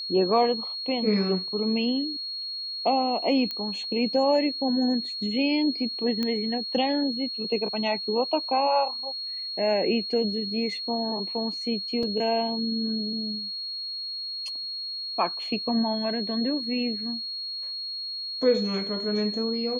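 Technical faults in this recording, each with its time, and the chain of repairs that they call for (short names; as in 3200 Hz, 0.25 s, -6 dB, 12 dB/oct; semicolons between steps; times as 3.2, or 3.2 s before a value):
tone 4300 Hz -31 dBFS
3.51 pop -18 dBFS
6.23 pop -15 dBFS
12.03 gap 3.1 ms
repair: de-click; notch 4300 Hz, Q 30; interpolate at 12.03, 3.1 ms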